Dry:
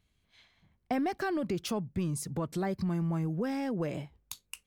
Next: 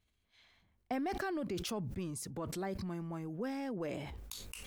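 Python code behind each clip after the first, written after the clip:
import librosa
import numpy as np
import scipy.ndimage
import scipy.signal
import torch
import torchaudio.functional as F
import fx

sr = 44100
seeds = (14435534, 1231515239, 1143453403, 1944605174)

y = fx.peak_eq(x, sr, hz=150.0, db=-8.5, octaves=0.58)
y = fx.sustainer(y, sr, db_per_s=29.0)
y = F.gain(torch.from_numpy(y), -5.5).numpy()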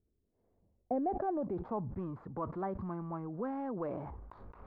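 y = scipy.ndimage.median_filter(x, 15, mode='constant')
y = fx.filter_sweep_lowpass(y, sr, from_hz=400.0, to_hz=1100.0, start_s=0.26, end_s=1.98, q=2.6)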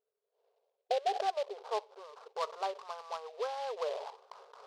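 y = fx.brickwall_bandpass(x, sr, low_hz=400.0, high_hz=1700.0)
y = fx.noise_mod_delay(y, sr, seeds[0], noise_hz=3000.0, depth_ms=0.041)
y = F.gain(torch.from_numpy(y), 4.0).numpy()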